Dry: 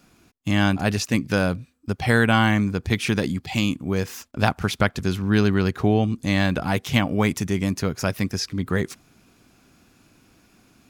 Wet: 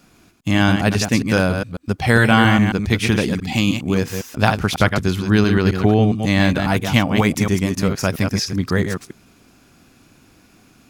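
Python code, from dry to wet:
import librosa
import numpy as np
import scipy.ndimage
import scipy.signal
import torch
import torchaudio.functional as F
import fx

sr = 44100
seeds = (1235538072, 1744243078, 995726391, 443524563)

y = fx.reverse_delay(x, sr, ms=136, wet_db=-6)
y = y * 10.0 ** (4.0 / 20.0)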